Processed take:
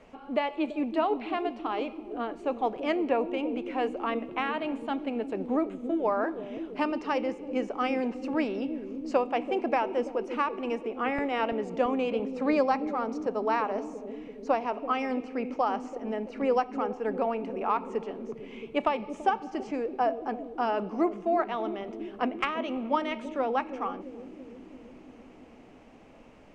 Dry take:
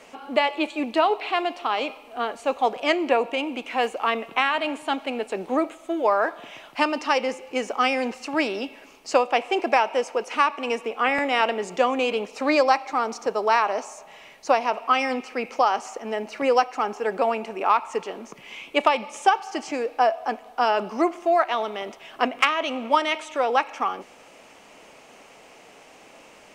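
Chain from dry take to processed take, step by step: RIAA curve playback; on a send: bucket-brigade echo 335 ms, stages 1024, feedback 75%, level -7 dB; on the sum: trim -8 dB

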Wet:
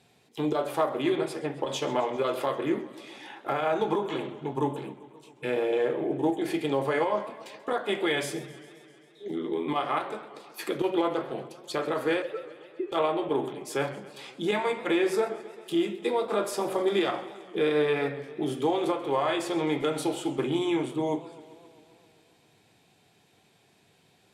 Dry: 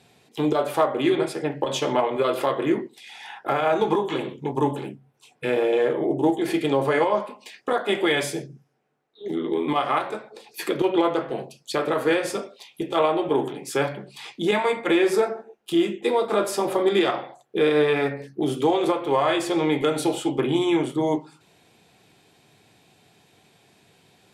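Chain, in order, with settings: 12.22–12.92 s: formants replaced by sine waves; modulated delay 132 ms, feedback 72%, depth 130 cents, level -18 dB; trim -5.5 dB

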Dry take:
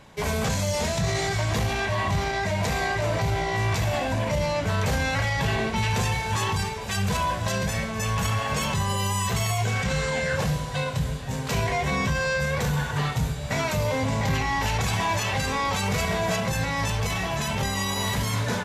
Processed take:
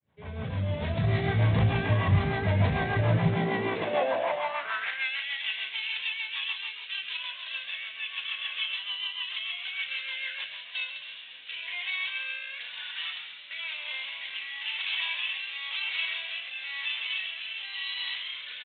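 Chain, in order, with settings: fade-in on the opening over 1.20 s; rotary cabinet horn 6.7 Hz, later 1 Hz, at 10.34 s; frequency-shifting echo 135 ms, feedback 53%, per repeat +58 Hz, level -9 dB; resampled via 8 kHz; high-pass sweep 88 Hz -> 2.9 kHz, 2.95–5.18 s; trim -1.5 dB

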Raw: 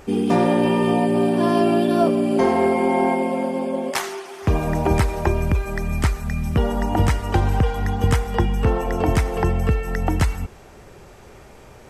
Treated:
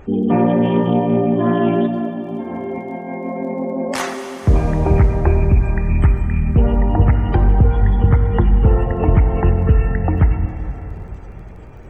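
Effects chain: spectral gate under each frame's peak -25 dB strong; bass shelf 190 Hz +9 dB; 1.87–4.14 s: compressor with a negative ratio -25 dBFS, ratio -1; crackle 20 per s -41 dBFS; plate-style reverb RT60 3.9 s, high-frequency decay 0.95×, DRR 5.5 dB; loudspeaker Doppler distortion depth 0.2 ms; trim -1 dB

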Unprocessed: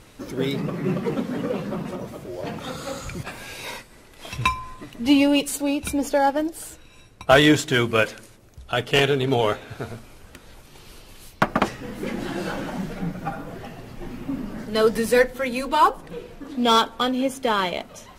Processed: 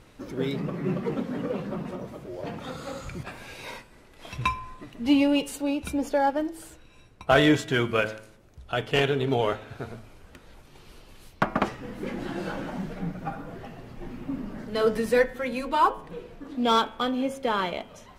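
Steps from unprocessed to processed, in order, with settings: treble shelf 4.3 kHz -8 dB; de-hum 108.4 Hz, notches 32; trim -3.5 dB

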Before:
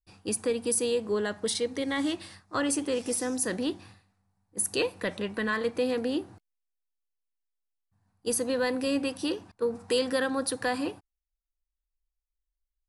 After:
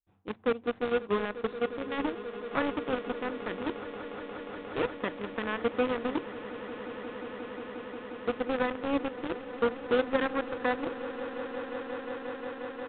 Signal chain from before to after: median filter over 15 samples; Chebyshev shaper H 3 -12 dB, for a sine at -18 dBFS; in parallel at -3.5 dB: bit crusher 5-bit; on the sum: resampled via 8 kHz; echo with a slow build-up 178 ms, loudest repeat 8, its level -17 dB

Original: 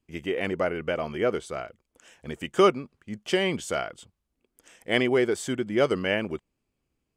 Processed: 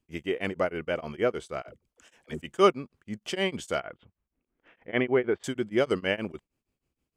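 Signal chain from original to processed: 1.62–2.42 s: phase dispersion lows, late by 64 ms, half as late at 340 Hz; 3.80–5.44 s: low-pass 2.6 kHz 24 dB/octave; tremolo of two beating tones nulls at 6.4 Hz

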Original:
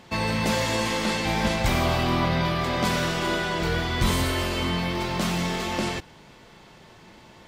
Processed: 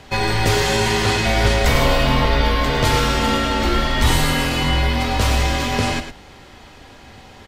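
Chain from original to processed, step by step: frequency shift -110 Hz; delay 107 ms -9 dB; trim +7 dB

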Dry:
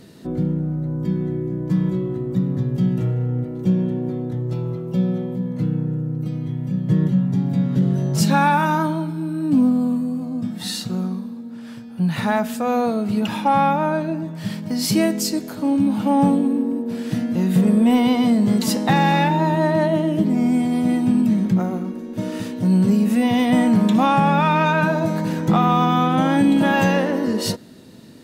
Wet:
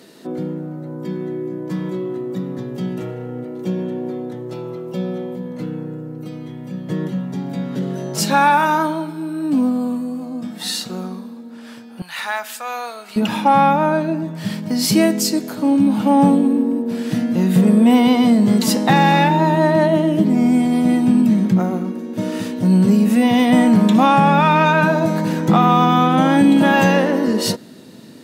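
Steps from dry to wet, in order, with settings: high-pass 310 Hz 12 dB/octave, from 12.02 s 1.2 kHz, from 13.16 s 140 Hz; trim +4 dB

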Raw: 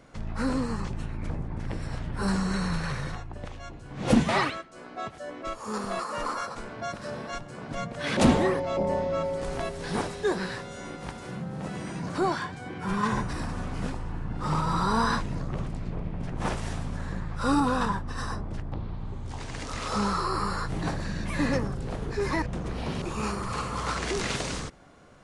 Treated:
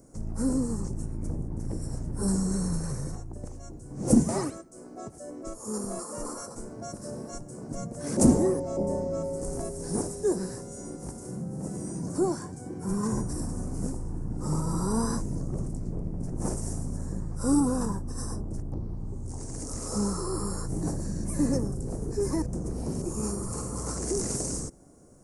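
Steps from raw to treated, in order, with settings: FFT filter 170 Hz 0 dB, 340 Hz +3 dB, 3.5 kHz -26 dB, 5.5 kHz +1 dB, 8.7 kHz +11 dB

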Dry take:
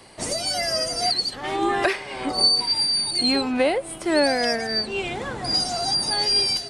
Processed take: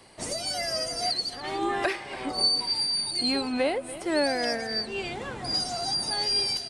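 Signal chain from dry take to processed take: delay 287 ms -15.5 dB; trim -5.5 dB

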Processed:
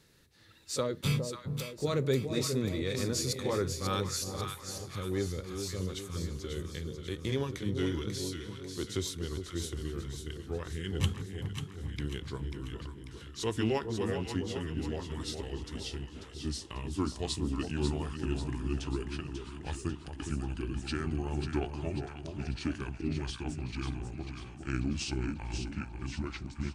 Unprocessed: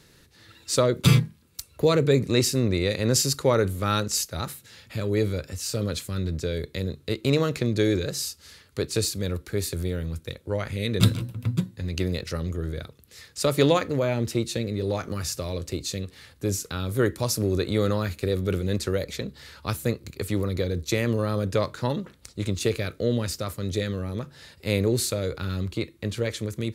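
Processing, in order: pitch bend over the whole clip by -8.5 st starting unshifted; two-band feedback delay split 910 Hz, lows 411 ms, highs 542 ms, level -6.5 dB; trim -8.5 dB

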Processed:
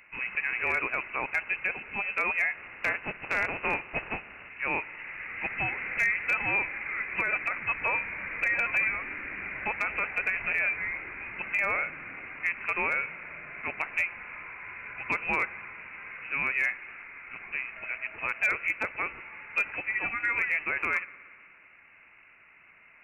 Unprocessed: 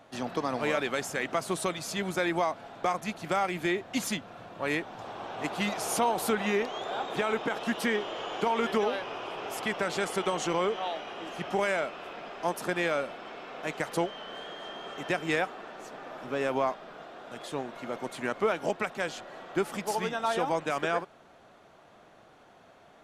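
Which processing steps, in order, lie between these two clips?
2.54–4.48 s: spectral contrast reduction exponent 0.57; spring tank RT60 2.3 s, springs 57 ms, chirp 25 ms, DRR 18 dB; frequency inversion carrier 2.8 kHz; hard clipper -17.5 dBFS, distortion -31 dB

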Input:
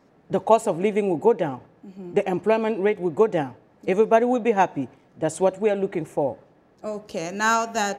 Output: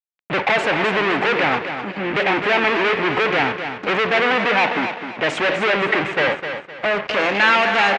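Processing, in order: fuzz box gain 39 dB, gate -47 dBFS; four-pole ladder low-pass 2.9 kHz, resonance 35%; tilt EQ +3.5 dB/octave; 4.23–5.33 s: high-pass 130 Hz; feedback delay 257 ms, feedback 33%, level -8.5 dB; trim +5 dB

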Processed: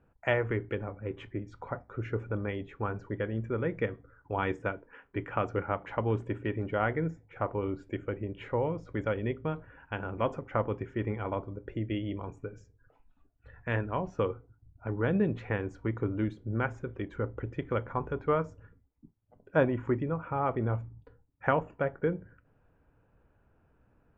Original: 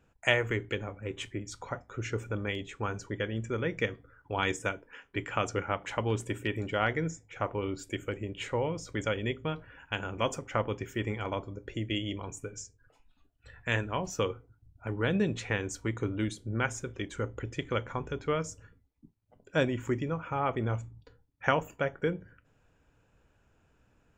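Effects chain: low-pass 1.5 kHz 12 dB/octave; 17.96–19.97 s: dynamic bell 950 Hz, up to +6 dB, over -45 dBFS, Q 1.1; trim +1 dB

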